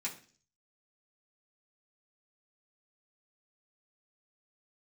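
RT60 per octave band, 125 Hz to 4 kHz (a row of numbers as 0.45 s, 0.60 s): 0.65 s, 0.55 s, 0.50 s, 0.40 s, 0.45 s, 0.55 s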